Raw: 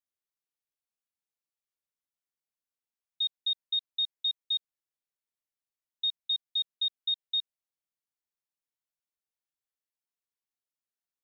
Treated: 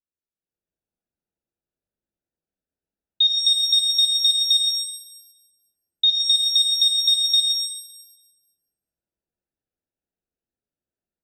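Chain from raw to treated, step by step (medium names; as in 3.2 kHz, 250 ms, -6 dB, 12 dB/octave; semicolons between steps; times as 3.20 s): local Wiener filter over 41 samples; level rider; pitch-shifted reverb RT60 1 s, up +7 st, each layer -8 dB, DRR 3.5 dB; trim +2.5 dB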